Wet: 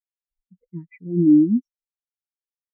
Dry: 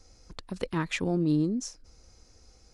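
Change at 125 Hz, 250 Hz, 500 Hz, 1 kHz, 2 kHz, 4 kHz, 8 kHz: +3.0 dB, +11.0 dB, n/a, under -30 dB, under -15 dB, under -40 dB, under -40 dB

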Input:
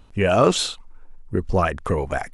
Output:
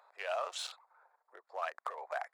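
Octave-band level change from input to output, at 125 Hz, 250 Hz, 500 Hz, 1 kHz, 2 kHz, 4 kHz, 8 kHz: under -40 dB, under -40 dB, -20.5 dB, -15.0 dB, -14.0 dB, -16.5 dB, -18.0 dB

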